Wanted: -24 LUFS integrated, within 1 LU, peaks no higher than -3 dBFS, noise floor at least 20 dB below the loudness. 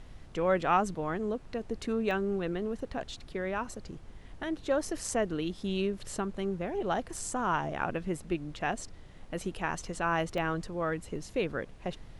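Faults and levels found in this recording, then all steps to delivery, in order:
dropouts 4; longest dropout 1.1 ms; noise floor -50 dBFS; noise floor target -53 dBFS; loudness -33.0 LUFS; peak level -15.0 dBFS; loudness target -24.0 LUFS
-> interpolate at 2.11/7.16/10.38/11.16 s, 1.1 ms; noise print and reduce 6 dB; trim +9 dB

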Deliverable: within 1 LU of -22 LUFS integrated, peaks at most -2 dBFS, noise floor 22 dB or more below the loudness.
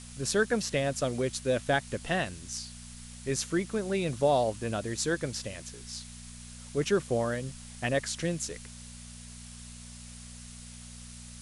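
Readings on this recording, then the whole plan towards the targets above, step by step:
hum 60 Hz; highest harmonic 240 Hz; hum level -46 dBFS; noise floor -46 dBFS; noise floor target -53 dBFS; loudness -31.0 LUFS; peak level -12.5 dBFS; loudness target -22.0 LUFS
-> de-hum 60 Hz, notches 4; noise print and reduce 7 dB; trim +9 dB

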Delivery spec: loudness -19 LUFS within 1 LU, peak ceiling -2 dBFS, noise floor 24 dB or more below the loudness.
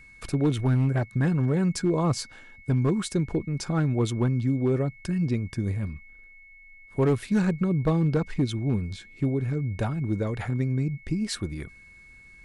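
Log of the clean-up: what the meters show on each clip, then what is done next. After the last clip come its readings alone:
clipped samples 0.9%; clipping level -16.5 dBFS; steady tone 2.2 kHz; tone level -49 dBFS; loudness -26.5 LUFS; peak level -16.5 dBFS; loudness target -19.0 LUFS
-> clip repair -16.5 dBFS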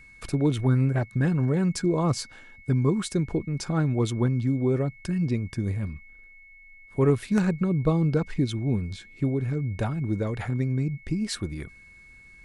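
clipped samples 0.0%; steady tone 2.2 kHz; tone level -49 dBFS
-> band-stop 2.2 kHz, Q 30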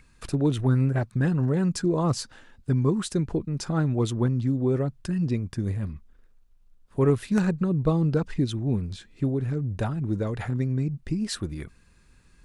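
steady tone not found; loudness -26.5 LUFS; peak level -8.0 dBFS; loudness target -19.0 LUFS
-> trim +7.5 dB; peak limiter -2 dBFS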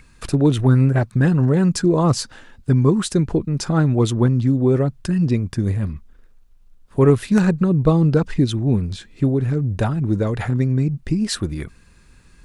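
loudness -19.0 LUFS; peak level -2.0 dBFS; noise floor -50 dBFS

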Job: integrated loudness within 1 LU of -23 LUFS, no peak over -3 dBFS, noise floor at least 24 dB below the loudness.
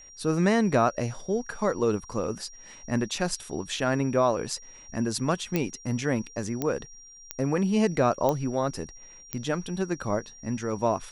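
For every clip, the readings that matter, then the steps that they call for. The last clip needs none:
clicks found 5; steady tone 5.7 kHz; tone level -47 dBFS; loudness -28.0 LUFS; peak level -9.0 dBFS; loudness target -23.0 LUFS
-> de-click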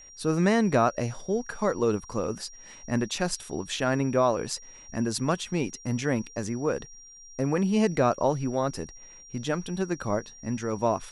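clicks found 0; steady tone 5.7 kHz; tone level -47 dBFS
-> band-stop 5.7 kHz, Q 30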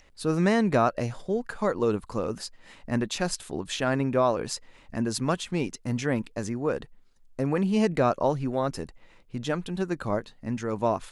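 steady tone not found; loudness -28.0 LUFS; peak level -9.0 dBFS; loudness target -23.0 LUFS
-> trim +5 dB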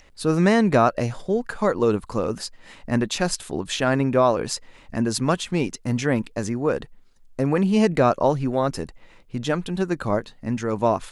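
loudness -23.0 LUFS; peak level -4.0 dBFS; noise floor -51 dBFS

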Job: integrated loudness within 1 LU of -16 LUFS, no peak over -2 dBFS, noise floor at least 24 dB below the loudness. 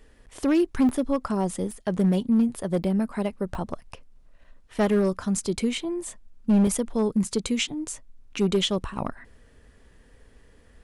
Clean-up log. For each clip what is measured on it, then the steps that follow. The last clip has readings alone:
clipped samples 1.3%; clipping level -15.5 dBFS; dropouts 5; longest dropout 2.4 ms; loudness -25.5 LUFS; peak level -15.5 dBFS; loudness target -16.0 LUFS
-> clip repair -15.5 dBFS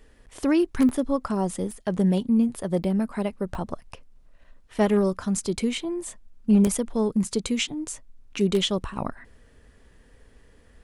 clipped samples 0.0%; dropouts 5; longest dropout 2.4 ms
-> interpolate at 0.89/1.71/2.84/3.55/6.67 s, 2.4 ms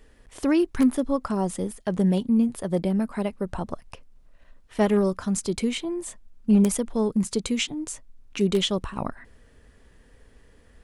dropouts 0; loudness -25.0 LUFS; peak level -6.5 dBFS; loudness target -16.0 LUFS
-> trim +9 dB; peak limiter -2 dBFS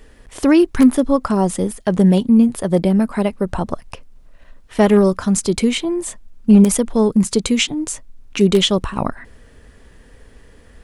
loudness -16.5 LUFS; peak level -2.0 dBFS; noise floor -47 dBFS

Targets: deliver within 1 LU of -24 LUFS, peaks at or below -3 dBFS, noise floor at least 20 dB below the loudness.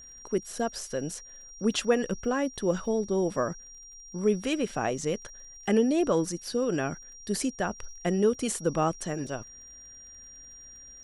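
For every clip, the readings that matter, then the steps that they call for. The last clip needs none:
tick rate 28 per s; steady tone 5.7 kHz; tone level -46 dBFS; loudness -29.0 LUFS; peak level -11.0 dBFS; loudness target -24.0 LUFS
-> de-click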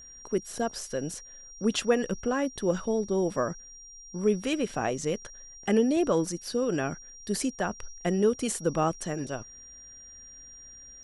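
tick rate 0 per s; steady tone 5.7 kHz; tone level -46 dBFS
-> band-stop 5.7 kHz, Q 30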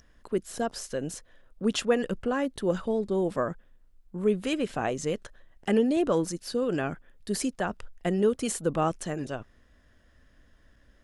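steady tone not found; loudness -29.5 LUFS; peak level -11.0 dBFS; loudness target -24.0 LUFS
-> trim +5.5 dB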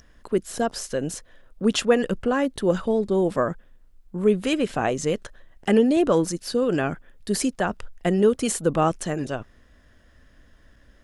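loudness -24.0 LUFS; peak level -6.0 dBFS; noise floor -55 dBFS

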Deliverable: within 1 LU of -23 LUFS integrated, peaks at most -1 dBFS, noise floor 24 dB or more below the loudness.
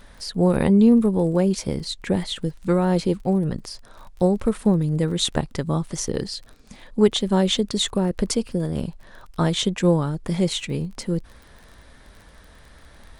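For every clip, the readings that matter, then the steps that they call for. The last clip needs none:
tick rate 28 per s; loudness -22.0 LUFS; peak level -4.5 dBFS; loudness target -23.0 LUFS
-> de-click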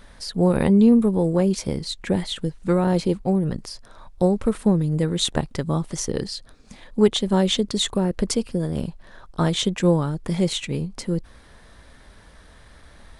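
tick rate 0 per s; loudness -22.0 LUFS; peak level -4.5 dBFS; loudness target -23.0 LUFS
-> trim -1 dB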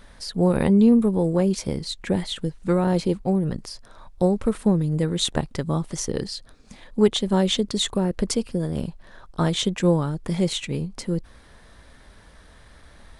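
loudness -23.0 LUFS; peak level -5.5 dBFS; noise floor -50 dBFS

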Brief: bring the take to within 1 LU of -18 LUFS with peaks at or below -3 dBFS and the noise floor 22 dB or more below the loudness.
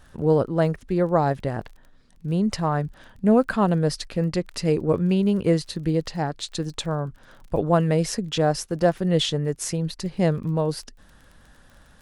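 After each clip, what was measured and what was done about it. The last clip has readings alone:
tick rate 25 per s; loudness -23.5 LUFS; peak level -6.5 dBFS; loudness target -18.0 LUFS
-> de-click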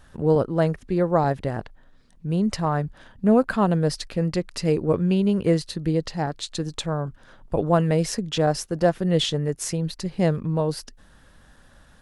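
tick rate 0 per s; loudness -23.5 LUFS; peak level -6.5 dBFS; loudness target -18.0 LUFS
-> trim +5.5 dB; peak limiter -3 dBFS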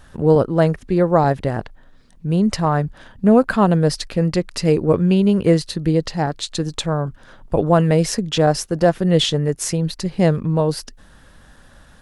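loudness -18.5 LUFS; peak level -3.0 dBFS; noise floor -48 dBFS

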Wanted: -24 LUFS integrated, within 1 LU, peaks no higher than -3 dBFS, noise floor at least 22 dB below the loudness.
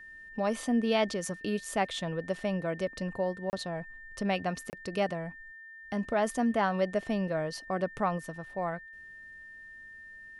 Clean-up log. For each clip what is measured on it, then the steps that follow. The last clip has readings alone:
dropouts 2; longest dropout 29 ms; steady tone 1.8 kHz; tone level -46 dBFS; loudness -32.0 LUFS; peak level -15.0 dBFS; loudness target -24.0 LUFS
-> interpolate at 3.50/4.70 s, 29 ms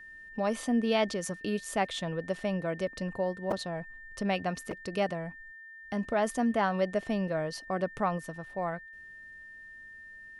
dropouts 0; steady tone 1.8 kHz; tone level -46 dBFS
-> band-stop 1.8 kHz, Q 30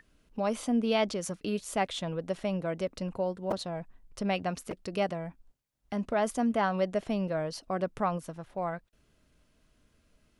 steady tone not found; loudness -32.0 LUFS; peak level -15.5 dBFS; loudness target -24.0 LUFS
-> trim +8 dB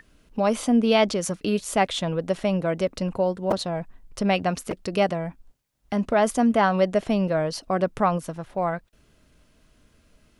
loudness -24.0 LUFS; peak level -7.5 dBFS; noise floor -62 dBFS

